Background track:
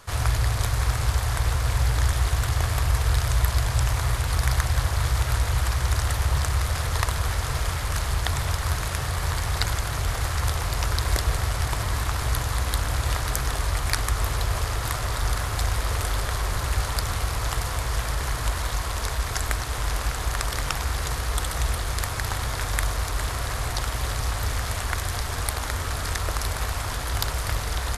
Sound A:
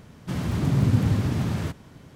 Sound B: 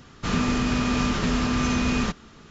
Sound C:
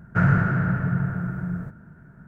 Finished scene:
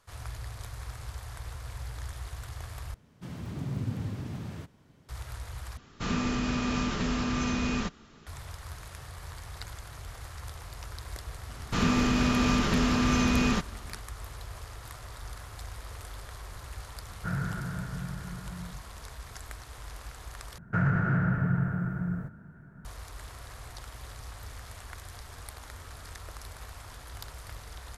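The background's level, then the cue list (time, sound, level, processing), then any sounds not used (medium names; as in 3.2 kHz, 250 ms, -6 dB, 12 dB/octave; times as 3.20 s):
background track -17 dB
2.94 s: replace with A -12.5 dB
5.77 s: replace with B -6 dB
11.49 s: add B -1.5 dB
17.09 s: add C -13.5 dB
20.58 s: replace with C -3 dB + peak limiter -14.5 dBFS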